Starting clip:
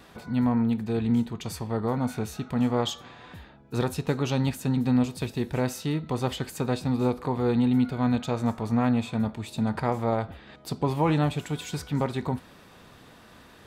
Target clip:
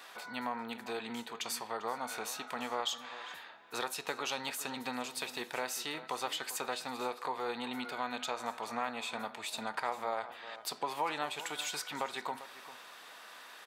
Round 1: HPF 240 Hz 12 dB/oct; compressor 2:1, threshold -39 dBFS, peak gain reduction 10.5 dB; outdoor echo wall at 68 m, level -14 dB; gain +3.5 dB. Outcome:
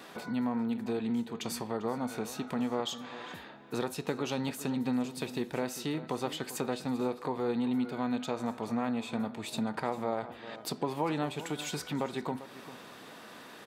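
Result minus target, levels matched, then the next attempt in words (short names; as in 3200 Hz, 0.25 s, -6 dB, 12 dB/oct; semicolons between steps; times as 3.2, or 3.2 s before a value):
250 Hz band +9.5 dB
HPF 850 Hz 12 dB/oct; compressor 2:1, threshold -39 dBFS, peak gain reduction 8 dB; outdoor echo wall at 68 m, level -14 dB; gain +3.5 dB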